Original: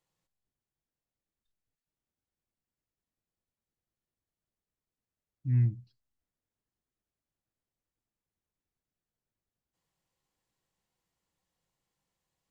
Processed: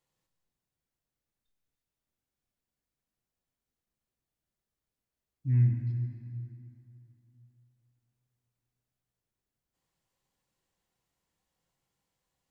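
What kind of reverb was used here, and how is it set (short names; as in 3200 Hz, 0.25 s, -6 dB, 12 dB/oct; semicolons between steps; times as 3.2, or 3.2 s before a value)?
plate-style reverb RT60 3 s, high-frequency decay 0.8×, DRR 3 dB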